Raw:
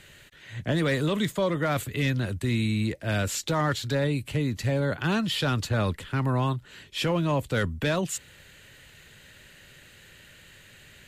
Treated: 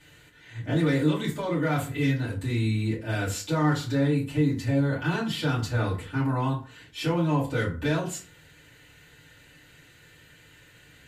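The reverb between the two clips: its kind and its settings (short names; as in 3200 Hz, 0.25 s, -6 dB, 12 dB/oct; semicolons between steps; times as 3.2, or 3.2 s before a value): FDN reverb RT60 0.4 s, low-frequency decay 1.05×, high-frequency decay 0.6×, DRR -9.5 dB; gain -11.5 dB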